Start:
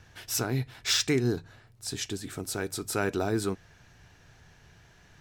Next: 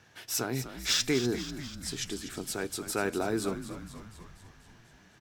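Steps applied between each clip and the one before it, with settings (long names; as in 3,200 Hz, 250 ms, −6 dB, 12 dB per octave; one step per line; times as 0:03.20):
high-pass filter 160 Hz 12 dB per octave
echo with shifted repeats 245 ms, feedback 63%, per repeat −75 Hz, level −11 dB
level −1.5 dB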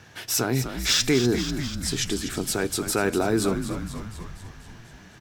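low-shelf EQ 170 Hz +4.5 dB
in parallel at +0.5 dB: brickwall limiter −26 dBFS, peak gain reduction 12 dB
on the sum: level +3 dB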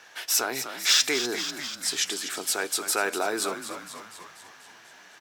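high-pass filter 630 Hz 12 dB per octave
level +1.5 dB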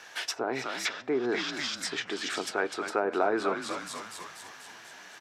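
treble cut that deepens with the level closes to 740 Hz, closed at −21 dBFS
level +2.5 dB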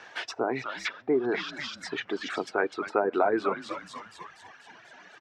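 reverb reduction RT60 1.7 s
head-to-tape spacing loss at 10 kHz 21 dB
level +5 dB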